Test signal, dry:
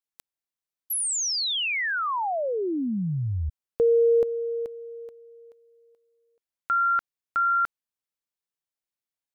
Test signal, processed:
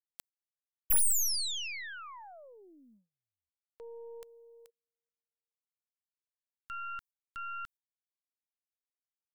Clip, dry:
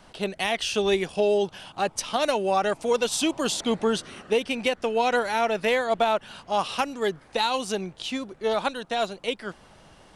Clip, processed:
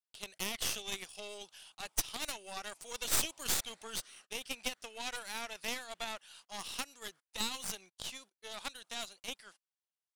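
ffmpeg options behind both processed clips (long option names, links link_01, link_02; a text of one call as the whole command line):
ffmpeg -i in.wav -af "aderivative,agate=range=-34dB:threshold=-57dB:ratio=16:release=96:detection=rms,aeval=exprs='0.2*(cos(1*acos(clip(val(0)/0.2,-1,1)))-cos(1*PI/2))+0.0631*(cos(6*acos(clip(val(0)/0.2,-1,1)))-cos(6*PI/2))':channel_layout=same,volume=-4dB" out.wav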